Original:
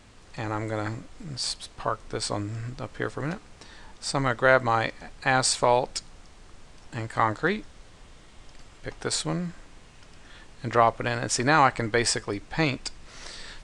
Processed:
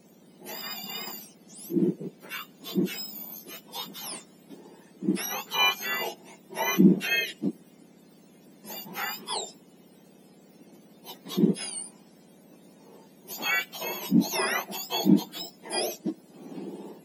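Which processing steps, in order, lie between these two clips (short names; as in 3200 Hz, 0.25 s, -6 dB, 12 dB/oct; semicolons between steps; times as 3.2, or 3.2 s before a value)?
spectrum mirrored in octaves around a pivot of 1400 Hz; varispeed -20%; bell 1300 Hz -9.5 dB 0.98 oct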